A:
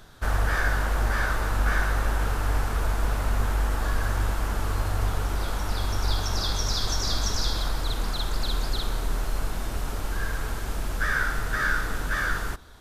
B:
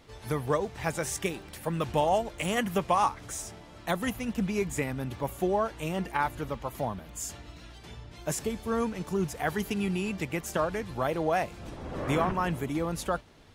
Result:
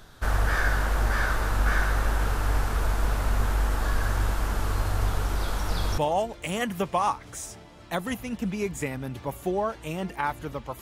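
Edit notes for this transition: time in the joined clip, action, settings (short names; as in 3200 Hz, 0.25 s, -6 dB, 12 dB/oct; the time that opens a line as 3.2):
A
5.42 add B from 1.38 s 0.56 s -9.5 dB
5.98 switch to B from 1.94 s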